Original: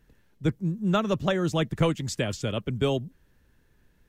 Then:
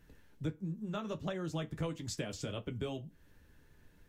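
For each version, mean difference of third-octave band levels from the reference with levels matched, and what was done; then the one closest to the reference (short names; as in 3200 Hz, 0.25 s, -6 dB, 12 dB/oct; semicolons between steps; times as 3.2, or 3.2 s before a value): 3.5 dB: compressor 6:1, threshold -37 dBFS, peak gain reduction 17.5 dB; flange 1.5 Hz, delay 9.9 ms, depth 4.8 ms, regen -41%; FDN reverb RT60 0.32 s, low-frequency decay 0.85×, high-frequency decay 0.75×, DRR 12.5 dB; gain +4.5 dB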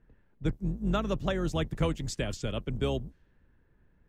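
2.0 dB: octaver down 2 oct, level -2 dB; in parallel at -3 dB: compressor, threshold -32 dBFS, peak gain reduction 14.5 dB; on the sum: low-pass opened by the level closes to 1700 Hz, open at -22.5 dBFS; gain -7 dB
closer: second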